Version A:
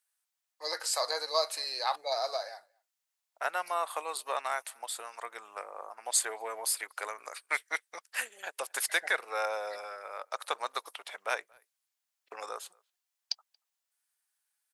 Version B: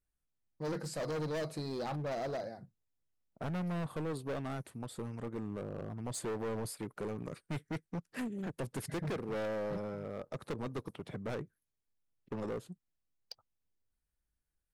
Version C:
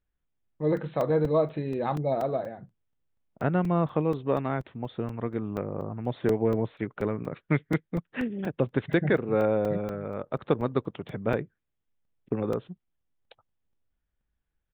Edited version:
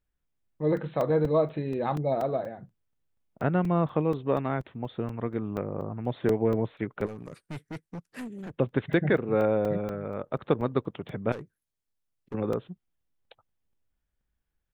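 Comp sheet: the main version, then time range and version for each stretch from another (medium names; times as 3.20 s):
C
7.06–8.51 s: from B
11.32–12.34 s: from B
not used: A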